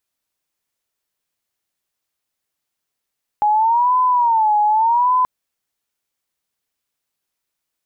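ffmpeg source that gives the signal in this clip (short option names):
-f lavfi -i "aevalsrc='0.251*sin(2*PI*(923.5*t-86.5/(2*PI*0.85)*sin(2*PI*0.85*t)))':d=1.83:s=44100"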